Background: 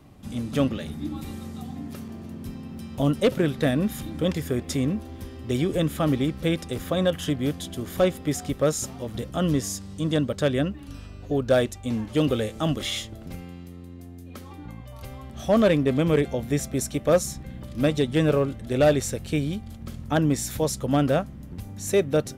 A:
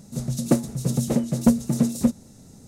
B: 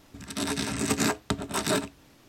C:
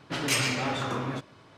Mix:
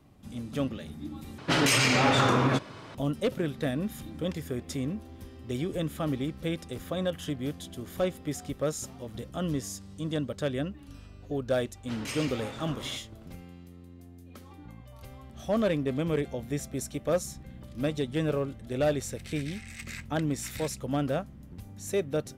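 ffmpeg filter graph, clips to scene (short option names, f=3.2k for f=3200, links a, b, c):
-filter_complex "[3:a]asplit=2[a][b];[0:a]volume=-7.5dB[c];[a]alimiter=level_in=22dB:limit=-1dB:release=50:level=0:latency=1[d];[2:a]highpass=f=2.1k:t=q:w=4.5[e];[c]asplit=2[f][g];[f]atrim=end=1.384[h];[d]atrim=end=1.57,asetpts=PTS-STARTPTS,volume=-13dB[i];[g]atrim=start=2.946[j];[b]atrim=end=1.57,asetpts=PTS-STARTPTS,volume=-11.5dB,afade=t=in:d=0.004:c=hsin,afade=t=out:st=1.566:d=0.004:c=hsin,adelay=11770[k];[e]atrim=end=2.28,asetpts=PTS-STARTPTS,volume=-17.5dB,afade=t=in:d=0.004:c=hsin,afade=t=out:st=2.276:d=0.004:c=hsin,adelay=18890[l];[h][i]acrossfade=d=0.004:c1=hsin:c2=hsin[m];[m][j]acrossfade=d=0.004:c1=hsin:c2=hsin[n];[n][k][l]amix=inputs=3:normalize=0"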